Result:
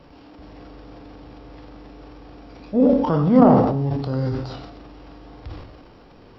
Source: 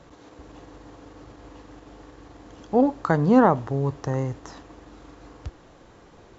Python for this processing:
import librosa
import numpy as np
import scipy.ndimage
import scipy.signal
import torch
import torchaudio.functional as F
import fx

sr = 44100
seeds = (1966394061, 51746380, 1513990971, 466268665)

y = fx.rev_gated(x, sr, seeds[0], gate_ms=340, shape='falling', drr_db=4.5)
y = fx.formant_shift(y, sr, semitones=-5)
y = fx.transient(y, sr, attack_db=-3, sustain_db=9)
y = F.gain(torch.from_numpy(y), 1.5).numpy()